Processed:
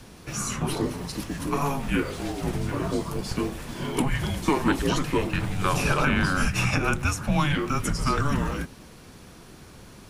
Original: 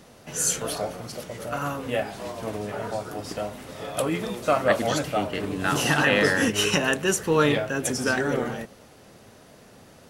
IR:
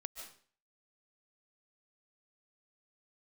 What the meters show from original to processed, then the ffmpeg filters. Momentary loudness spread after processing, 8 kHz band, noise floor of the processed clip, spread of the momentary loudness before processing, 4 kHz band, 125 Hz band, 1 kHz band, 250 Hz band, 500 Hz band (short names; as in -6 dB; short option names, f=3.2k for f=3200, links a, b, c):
8 LU, -5.5 dB, -47 dBFS, 13 LU, -4.0 dB, +5.5 dB, 0.0 dB, +1.5 dB, -5.5 dB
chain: -filter_complex "[0:a]acrossover=split=1300|2600[a][b][c];[a]acompressor=threshold=-25dB:ratio=4[d];[b]acompressor=threshold=-34dB:ratio=4[e];[c]acompressor=threshold=-38dB:ratio=4[f];[d][e][f]amix=inputs=3:normalize=0,afreqshift=-290,volume=4dB"